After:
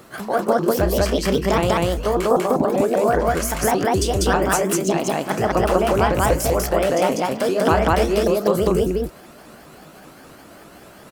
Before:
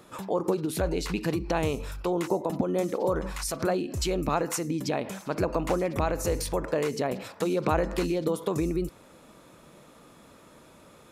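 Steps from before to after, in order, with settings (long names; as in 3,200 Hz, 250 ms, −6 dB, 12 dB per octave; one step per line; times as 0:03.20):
pitch shifter swept by a sawtooth +5.5 semitones, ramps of 197 ms
notch filter 3,700 Hz, Q 16
loudspeakers that aren't time-aligned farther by 11 metres −11 dB, 67 metres 0 dB
bit-depth reduction 12 bits, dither triangular
level +7.5 dB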